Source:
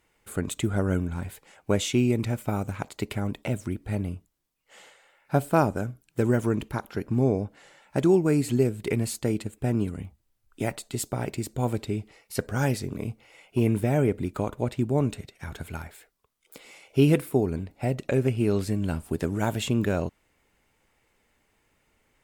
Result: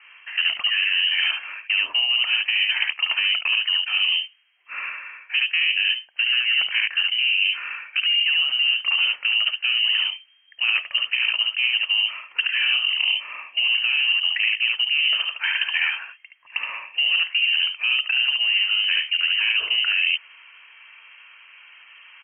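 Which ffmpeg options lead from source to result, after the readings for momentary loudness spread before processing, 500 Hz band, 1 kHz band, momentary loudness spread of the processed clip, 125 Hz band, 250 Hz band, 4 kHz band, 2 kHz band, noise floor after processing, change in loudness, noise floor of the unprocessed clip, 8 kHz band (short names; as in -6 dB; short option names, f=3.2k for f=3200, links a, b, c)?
13 LU, under -25 dB, -5.5 dB, 8 LU, under -40 dB, under -40 dB, +25.5 dB, +19.5 dB, -52 dBFS, +8.0 dB, -70 dBFS, under -30 dB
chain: -filter_complex "[0:a]acrossover=split=380 2000:gain=0.178 1 0.0891[a][b][c];[a][b][c]amix=inputs=3:normalize=0,acrossover=split=160|380[d][e][f];[d]acompressor=threshold=-56dB:ratio=4[g];[e]acompressor=threshold=-40dB:ratio=4[h];[f]acompressor=threshold=-36dB:ratio=4[i];[g][h][i]amix=inputs=3:normalize=0,asoftclip=type=tanh:threshold=-27dB,lowpass=f=2.7k:t=q:w=0.5098,lowpass=f=2.7k:t=q:w=0.6013,lowpass=f=2.7k:t=q:w=0.9,lowpass=f=2.7k:t=q:w=2.563,afreqshift=-3200,asplit=2[j][k];[k]aecho=0:1:56|72:0.158|0.596[l];[j][l]amix=inputs=2:normalize=0,apsyclip=28.5dB,tiltshelf=f=1.3k:g=-9,areverse,acompressor=threshold=-11dB:ratio=10,areverse,volume=-7dB"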